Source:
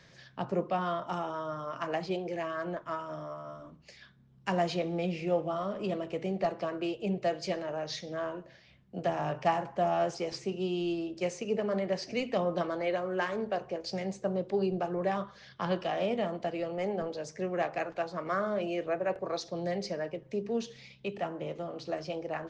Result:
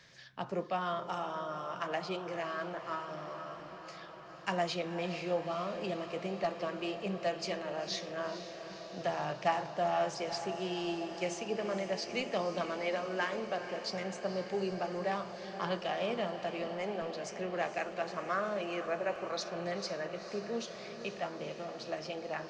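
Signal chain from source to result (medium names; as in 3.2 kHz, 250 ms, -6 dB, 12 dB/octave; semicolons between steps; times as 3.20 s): tilt shelf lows -4 dB, about 780 Hz; echo that smears into a reverb 476 ms, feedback 76%, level -11 dB; trim -3 dB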